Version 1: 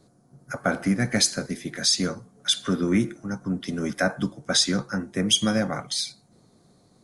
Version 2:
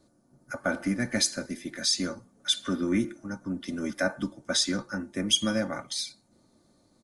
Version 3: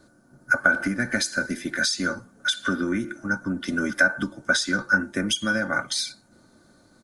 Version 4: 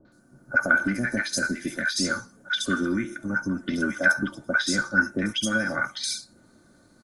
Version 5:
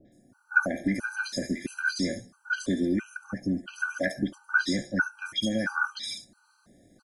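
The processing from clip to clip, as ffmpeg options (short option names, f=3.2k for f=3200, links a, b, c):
-af "aecho=1:1:3.4:0.53,volume=-5.5dB"
-af "acompressor=threshold=-29dB:ratio=12,equalizer=f=1.5k:t=o:w=0.28:g=14.5,volume=7dB"
-filter_complex "[0:a]acrossover=split=810|4200[a][b][c];[b]adelay=50[d];[c]adelay=120[e];[a][d][e]amix=inputs=3:normalize=0"
-filter_complex "[0:a]acrossover=split=5000[a][b];[b]acompressor=threshold=-39dB:ratio=4:attack=1:release=60[c];[a][c]amix=inputs=2:normalize=0,afftfilt=real='re*gt(sin(2*PI*1.5*pts/sr)*(1-2*mod(floor(b*sr/1024/800),2)),0)':imag='im*gt(sin(2*PI*1.5*pts/sr)*(1-2*mod(floor(b*sr/1024/800),2)),0)':win_size=1024:overlap=0.75"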